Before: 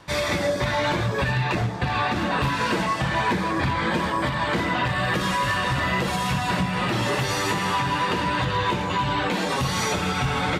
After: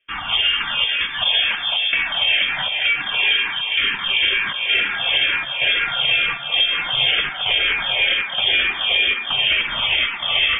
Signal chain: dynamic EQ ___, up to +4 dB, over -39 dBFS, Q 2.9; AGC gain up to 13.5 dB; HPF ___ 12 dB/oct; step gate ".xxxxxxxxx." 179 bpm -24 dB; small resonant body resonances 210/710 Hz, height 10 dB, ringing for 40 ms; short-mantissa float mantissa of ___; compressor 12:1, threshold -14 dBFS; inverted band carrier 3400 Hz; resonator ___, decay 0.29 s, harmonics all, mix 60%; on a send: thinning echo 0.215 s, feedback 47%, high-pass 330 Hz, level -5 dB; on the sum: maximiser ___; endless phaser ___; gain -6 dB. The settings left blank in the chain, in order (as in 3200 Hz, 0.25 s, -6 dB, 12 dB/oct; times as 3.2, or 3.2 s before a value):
1200 Hz, 56 Hz, 2-bit, 390 Hz, +14.5 dB, -2.1 Hz